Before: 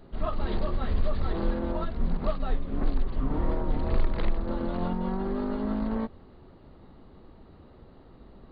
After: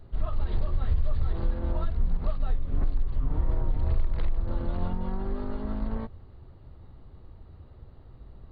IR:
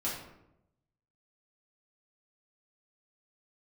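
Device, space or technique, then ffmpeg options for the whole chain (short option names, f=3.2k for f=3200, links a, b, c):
car stereo with a boomy subwoofer: -af "lowshelf=f=150:t=q:w=1.5:g=9.5,alimiter=limit=-12dB:level=0:latency=1:release=173,volume=-4.5dB"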